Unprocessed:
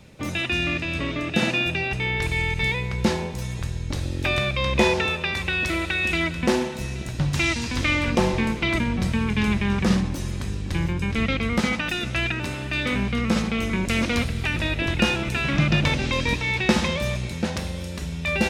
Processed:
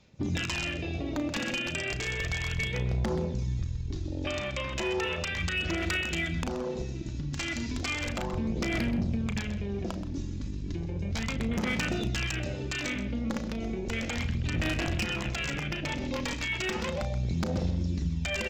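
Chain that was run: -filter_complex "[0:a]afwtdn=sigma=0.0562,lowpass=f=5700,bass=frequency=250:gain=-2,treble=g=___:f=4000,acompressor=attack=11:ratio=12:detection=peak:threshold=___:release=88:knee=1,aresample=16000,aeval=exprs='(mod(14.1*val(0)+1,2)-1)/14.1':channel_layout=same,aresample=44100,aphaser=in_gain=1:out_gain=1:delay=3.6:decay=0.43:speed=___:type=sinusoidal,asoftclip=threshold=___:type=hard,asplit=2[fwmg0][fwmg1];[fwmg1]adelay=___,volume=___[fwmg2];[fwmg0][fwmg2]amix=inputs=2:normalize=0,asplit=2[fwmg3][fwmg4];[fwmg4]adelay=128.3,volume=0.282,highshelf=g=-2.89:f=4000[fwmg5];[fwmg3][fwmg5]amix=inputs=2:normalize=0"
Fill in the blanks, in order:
13, 0.0282, 0.34, 0.0668, 35, 0.299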